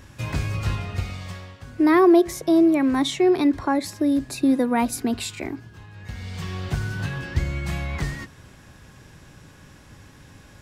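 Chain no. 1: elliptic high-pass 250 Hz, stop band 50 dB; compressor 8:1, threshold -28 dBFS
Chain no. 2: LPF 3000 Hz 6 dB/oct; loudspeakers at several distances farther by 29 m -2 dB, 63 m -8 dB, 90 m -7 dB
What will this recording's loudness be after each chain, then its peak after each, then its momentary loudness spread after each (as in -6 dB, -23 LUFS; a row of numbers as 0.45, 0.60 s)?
-33.5, -19.5 LUFS; -18.0, -2.0 dBFS; 21, 19 LU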